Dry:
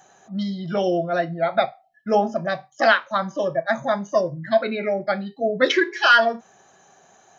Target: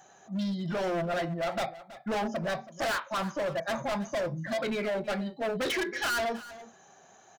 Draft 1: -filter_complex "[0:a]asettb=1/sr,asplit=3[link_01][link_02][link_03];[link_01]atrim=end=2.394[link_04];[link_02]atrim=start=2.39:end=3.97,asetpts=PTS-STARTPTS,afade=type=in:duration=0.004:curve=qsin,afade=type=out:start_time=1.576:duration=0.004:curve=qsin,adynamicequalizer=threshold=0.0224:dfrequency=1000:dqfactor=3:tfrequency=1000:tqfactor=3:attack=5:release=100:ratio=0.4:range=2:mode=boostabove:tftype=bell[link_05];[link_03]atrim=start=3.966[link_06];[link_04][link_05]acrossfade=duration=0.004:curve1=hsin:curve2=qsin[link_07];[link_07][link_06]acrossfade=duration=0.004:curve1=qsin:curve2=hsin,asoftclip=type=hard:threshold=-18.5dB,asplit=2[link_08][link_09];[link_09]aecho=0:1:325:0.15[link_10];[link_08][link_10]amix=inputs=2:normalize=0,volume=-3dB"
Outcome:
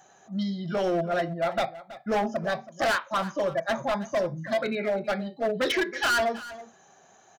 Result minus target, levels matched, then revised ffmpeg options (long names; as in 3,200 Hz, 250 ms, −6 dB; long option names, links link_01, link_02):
hard clipping: distortion −4 dB
-filter_complex "[0:a]asettb=1/sr,asplit=3[link_01][link_02][link_03];[link_01]atrim=end=2.394[link_04];[link_02]atrim=start=2.39:end=3.97,asetpts=PTS-STARTPTS,afade=type=in:duration=0.004:curve=qsin,afade=type=out:start_time=1.576:duration=0.004:curve=qsin,adynamicequalizer=threshold=0.0224:dfrequency=1000:dqfactor=3:tfrequency=1000:tqfactor=3:attack=5:release=100:ratio=0.4:range=2:mode=boostabove:tftype=bell[link_05];[link_03]atrim=start=3.966[link_06];[link_04][link_05]acrossfade=duration=0.004:curve1=hsin:curve2=qsin[link_07];[link_07][link_06]acrossfade=duration=0.004:curve1=qsin:curve2=hsin,asoftclip=type=hard:threshold=-25dB,asplit=2[link_08][link_09];[link_09]aecho=0:1:325:0.15[link_10];[link_08][link_10]amix=inputs=2:normalize=0,volume=-3dB"